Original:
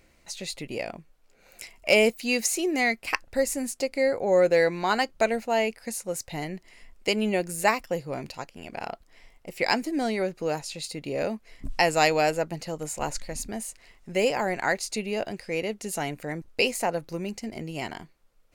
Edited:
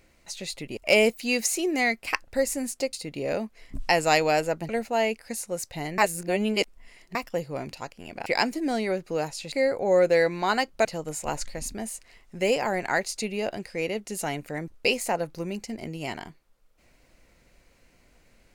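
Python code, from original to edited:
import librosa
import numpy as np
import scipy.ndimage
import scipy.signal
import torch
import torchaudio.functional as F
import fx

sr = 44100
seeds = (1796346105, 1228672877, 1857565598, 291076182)

y = fx.edit(x, sr, fx.cut(start_s=0.77, length_s=1.0),
    fx.swap(start_s=3.93, length_s=1.33, other_s=10.83, other_length_s=1.76),
    fx.reverse_span(start_s=6.55, length_s=1.17),
    fx.cut(start_s=8.83, length_s=0.74), tone=tone)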